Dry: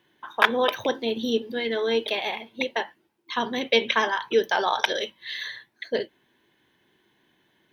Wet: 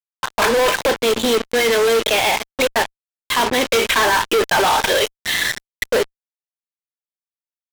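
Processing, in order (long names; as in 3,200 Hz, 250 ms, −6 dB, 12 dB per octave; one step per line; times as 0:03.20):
bass and treble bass −13 dB, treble −8 dB
fuzz pedal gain 42 dB, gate −36 dBFS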